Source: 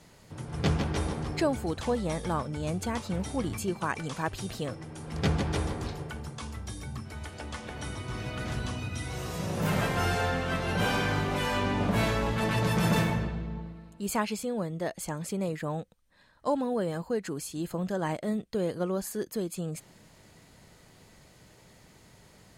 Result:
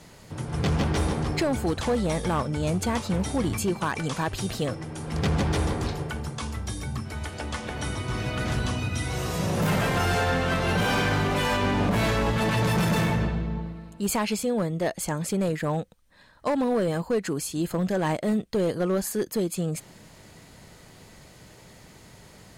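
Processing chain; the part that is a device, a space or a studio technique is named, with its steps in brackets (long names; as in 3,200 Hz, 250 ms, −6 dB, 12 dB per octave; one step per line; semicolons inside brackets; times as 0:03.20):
limiter into clipper (brickwall limiter −20.5 dBFS, peak gain reduction 6 dB; hard clipping −25.5 dBFS, distortion −17 dB)
level +6.5 dB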